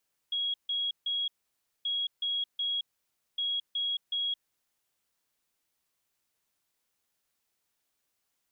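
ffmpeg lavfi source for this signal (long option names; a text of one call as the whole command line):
ffmpeg -f lavfi -i "aevalsrc='0.0398*sin(2*PI*3310*t)*clip(min(mod(mod(t,1.53),0.37),0.22-mod(mod(t,1.53),0.37))/0.005,0,1)*lt(mod(t,1.53),1.11)':duration=4.59:sample_rate=44100" out.wav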